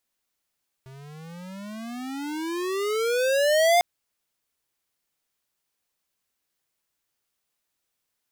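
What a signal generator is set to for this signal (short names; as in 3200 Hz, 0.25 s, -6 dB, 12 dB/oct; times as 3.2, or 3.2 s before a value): gliding synth tone square, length 2.95 s, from 130 Hz, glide +29.5 st, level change +27 dB, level -17.5 dB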